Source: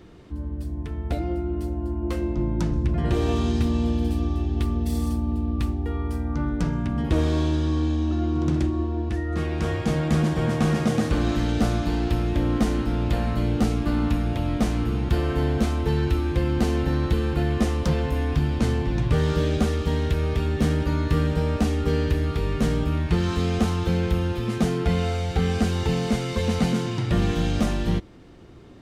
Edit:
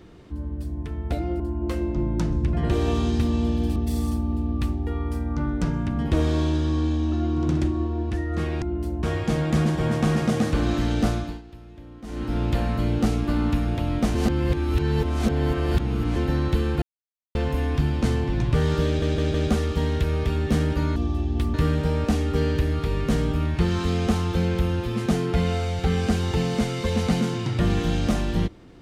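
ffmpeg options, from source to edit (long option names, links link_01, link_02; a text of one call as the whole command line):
ffmpeg -i in.wav -filter_complex "[0:a]asplit=16[link_01][link_02][link_03][link_04][link_05][link_06][link_07][link_08][link_09][link_10][link_11][link_12][link_13][link_14][link_15][link_16];[link_01]atrim=end=1.402[link_17];[link_02]atrim=start=1.808:end=4.172[link_18];[link_03]atrim=start=4.748:end=9.612[link_19];[link_04]atrim=start=1.398:end=1.812[link_20];[link_05]atrim=start=9.608:end=12,asetpts=PTS-STARTPTS,afade=type=out:start_time=2.042:duration=0.35:silence=0.0944061[link_21];[link_06]atrim=start=12:end=12.61,asetpts=PTS-STARTPTS,volume=-20.5dB[link_22];[link_07]atrim=start=12.61:end=14.732,asetpts=PTS-STARTPTS,afade=type=in:duration=0.35:silence=0.0944061[link_23];[link_08]atrim=start=14.728:end=16.742,asetpts=PTS-STARTPTS,areverse[link_24];[link_09]atrim=start=16.738:end=17.4,asetpts=PTS-STARTPTS,afade=type=out:start_time=0.658:duration=0.004:curve=hsin[link_25];[link_10]atrim=start=17.4:end=17.93,asetpts=PTS-STARTPTS,volume=0[link_26];[link_11]atrim=start=17.93:end=19.602,asetpts=PTS-STARTPTS,afade=type=in:duration=0.004:curve=hsin[link_27];[link_12]atrim=start=19.438:end=19.602[link_28];[link_13]atrim=start=19.438:end=19.602[link_29];[link_14]atrim=start=19.438:end=21.062[link_30];[link_15]atrim=start=4.168:end=4.752[link_31];[link_16]atrim=start=21.058[link_32];[link_17][link_18]acrossfade=duration=0.004:curve1=hsin:curve2=hsin[link_33];[link_33][link_19]acrossfade=duration=0.004:curve1=hsin:curve2=hsin[link_34];[link_34][link_20]acrossfade=duration=0.004:curve1=hsin:curve2=hsin[link_35];[link_21][link_22][link_23]concat=n=3:v=0:a=1[link_36];[link_35][link_36]acrossfade=duration=0.004:curve1=hsin:curve2=hsin[link_37];[link_37][link_24]acrossfade=duration=0.004:curve1=hsin:curve2=hsin[link_38];[link_25][link_26][link_27]concat=n=3:v=0:a=1[link_39];[link_38][link_39]acrossfade=duration=0.004:curve1=hsin:curve2=hsin[link_40];[link_40][link_28]acrossfade=duration=0.004:curve1=hsin:curve2=hsin[link_41];[link_41][link_29]acrossfade=duration=0.004:curve1=hsin:curve2=hsin[link_42];[link_42][link_30]acrossfade=duration=0.004:curve1=hsin:curve2=hsin[link_43];[link_43][link_31]acrossfade=duration=0.004:curve1=hsin:curve2=hsin[link_44];[link_44][link_32]acrossfade=duration=0.004:curve1=hsin:curve2=hsin" out.wav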